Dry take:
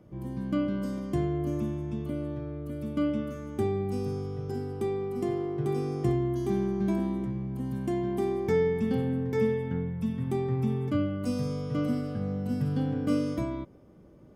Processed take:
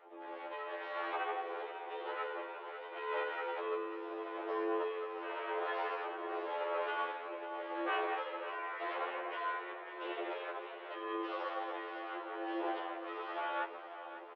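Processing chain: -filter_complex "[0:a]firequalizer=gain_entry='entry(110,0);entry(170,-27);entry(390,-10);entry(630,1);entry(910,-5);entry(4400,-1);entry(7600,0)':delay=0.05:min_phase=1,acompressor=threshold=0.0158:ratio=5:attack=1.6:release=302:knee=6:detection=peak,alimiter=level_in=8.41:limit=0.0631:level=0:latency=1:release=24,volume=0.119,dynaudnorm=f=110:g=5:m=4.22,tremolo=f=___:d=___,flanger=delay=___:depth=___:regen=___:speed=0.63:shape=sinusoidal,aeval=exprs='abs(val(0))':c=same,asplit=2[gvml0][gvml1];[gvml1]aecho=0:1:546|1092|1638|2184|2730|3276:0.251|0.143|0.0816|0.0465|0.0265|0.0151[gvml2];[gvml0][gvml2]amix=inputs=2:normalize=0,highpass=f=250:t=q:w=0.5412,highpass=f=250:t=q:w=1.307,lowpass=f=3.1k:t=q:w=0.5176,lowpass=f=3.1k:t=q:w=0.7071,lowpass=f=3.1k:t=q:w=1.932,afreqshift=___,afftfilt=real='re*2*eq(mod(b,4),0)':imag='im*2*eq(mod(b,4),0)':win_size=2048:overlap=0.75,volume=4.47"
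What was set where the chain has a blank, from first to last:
0.88, 0.56, 0, 9.7, 46, 140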